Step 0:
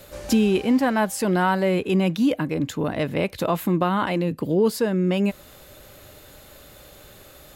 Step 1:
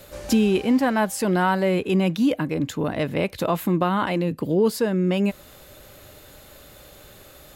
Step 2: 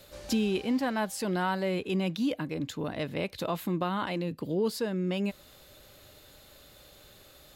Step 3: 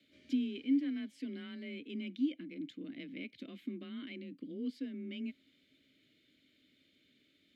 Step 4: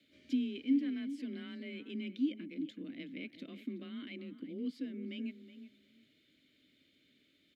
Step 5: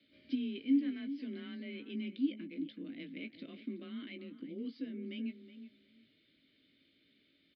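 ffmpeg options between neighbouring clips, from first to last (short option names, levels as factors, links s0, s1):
-af anull
-af "equalizer=f=4100:t=o:w=0.99:g=6,volume=0.355"
-filter_complex "[0:a]afreqshift=27,asplit=3[s0][s1][s2];[s0]bandpass=f=270:t=q:w=8,volume=1[s3];[s1]bandpass=f=2290:t=q:w=8,volume=0.501[s4];[s2]bandpass=f=3010:t=q:w=8,volume=0.355[s5];[s3][s4][s5]amix=inputs=3:normalize=0"
-filter_complex "[0:a]asplit=2[s0][s1];[s1]adelay=372,lowpass=f=2300:p=1,volume=0.251,asplit=2[s2][s3];[s3]adelay=372,lowpass=f=2300:p=1,volume=0.18[s4];[s0][s2][s4]amix=inputs=3:normalize=0"
-filter_complex "[0:a]asplit=2[s0][s1];[s1]adelay=18,volume=0.355[s2];[s0][s2]amix=inputs=2:normalize=0,aresample=11025,aresample=44100,volume=0.891"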